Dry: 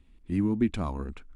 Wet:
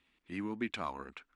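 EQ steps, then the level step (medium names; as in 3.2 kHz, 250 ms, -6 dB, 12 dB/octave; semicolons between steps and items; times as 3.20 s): band-pass filter 2.2 kHz, Q 0.66; +3.0 dB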